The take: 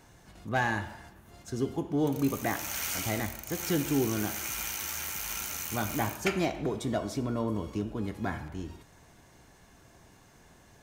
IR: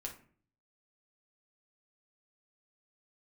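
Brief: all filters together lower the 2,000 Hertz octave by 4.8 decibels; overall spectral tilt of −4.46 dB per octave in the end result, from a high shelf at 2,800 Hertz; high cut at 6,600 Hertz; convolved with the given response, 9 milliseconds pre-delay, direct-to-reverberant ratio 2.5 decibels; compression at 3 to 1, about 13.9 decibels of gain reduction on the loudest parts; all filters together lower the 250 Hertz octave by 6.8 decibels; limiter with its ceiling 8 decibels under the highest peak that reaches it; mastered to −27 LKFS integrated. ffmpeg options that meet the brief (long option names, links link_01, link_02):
-filter_complex "[0:a]lowpass=6600,equalizer=frequency=250:width_type=o:gain=-9,equalizer=frequency=2000:width_type=o:gain=-4.5,highshelf=frequency=2800:gain=-4,acompressor=threshold=-47dB:ratio=3,alimiter=level_in=16.5dB:limit=-24dB:level=0:latency=1,volume=-16.5dB,asplit=2[link_01][link_02];[1:a]atrim=start_sample=2205,adelay=9[link_03];[link_02][link_03]afir=irnorm=-1:irlink=0,volume=-0.5dB[link_04];[link_01][link_04]amix=inputs=2:normalize=0,volume=22dB"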